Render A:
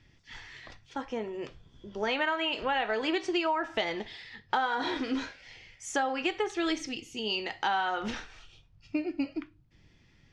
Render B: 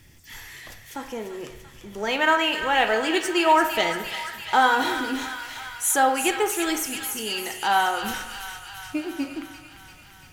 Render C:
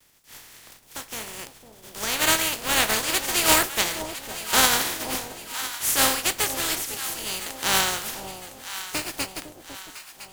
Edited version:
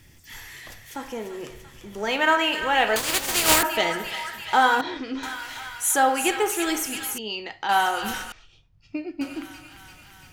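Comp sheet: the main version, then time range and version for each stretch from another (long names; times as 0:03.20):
B
0:02.96–0:03.63: punch in from C
0:04.81–0:05.23: punch in from A
0:07.18–0:07.69: punch in from A
0:08.32–0:09.21: punch in from A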